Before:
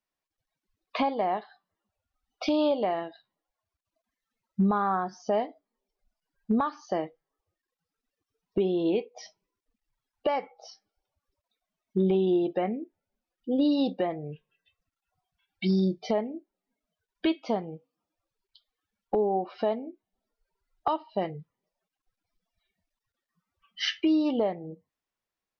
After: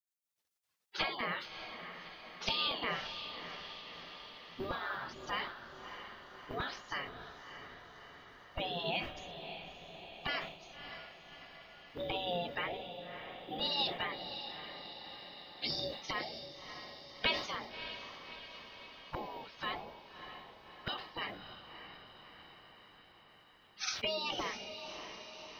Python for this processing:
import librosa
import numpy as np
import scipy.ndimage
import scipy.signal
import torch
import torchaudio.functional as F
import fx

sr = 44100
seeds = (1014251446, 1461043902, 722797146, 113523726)

y = fx.spec_gate(x, sr, threshold_db=-20, keep='weak')
y = fx.echo_diffused(y, sr, ms=610, feedback_pct=63, wet_db=-9)
y = fx.sustainer(y, sr, db_per_s=88.0)
y = y * 10.0 ** (7.0 / 20.0)